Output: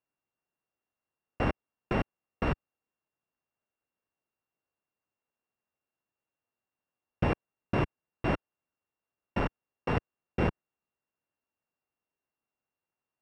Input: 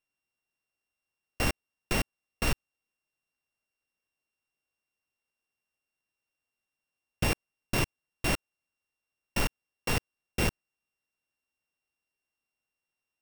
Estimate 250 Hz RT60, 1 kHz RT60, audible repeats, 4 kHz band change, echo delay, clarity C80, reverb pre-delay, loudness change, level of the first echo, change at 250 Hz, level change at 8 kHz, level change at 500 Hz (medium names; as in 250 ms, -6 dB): no reverb, no reverb, no echo, -11.5 dB, no echo, no reverb, no reverb, -1.0 dB, no echo, +2.5 dB, under -25 dB, +3.0 dB